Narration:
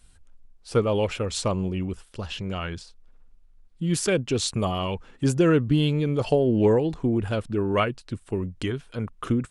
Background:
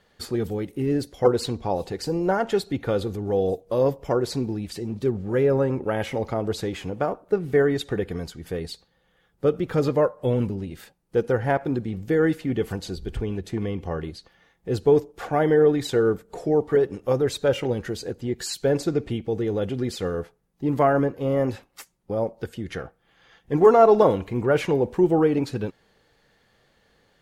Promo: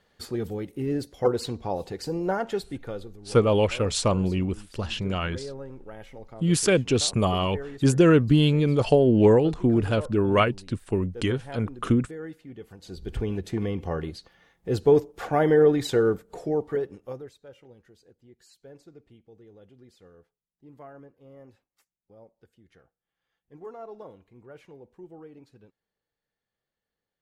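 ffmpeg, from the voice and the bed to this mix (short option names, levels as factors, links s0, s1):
-filter_complex "[0:a]adelay=2600,volume=1.33[s0];[1:a]volume=4.47,afade=t=out:st=2.34:d=0.83:silence=0.211349,afade=t=in:st=12.78:d=0.42:silence=0.141254,afade=t=out:st=15.93:d=1.41:silence=0.0501187[s1];[s0][s1]amix=inputs=2:normalize=0"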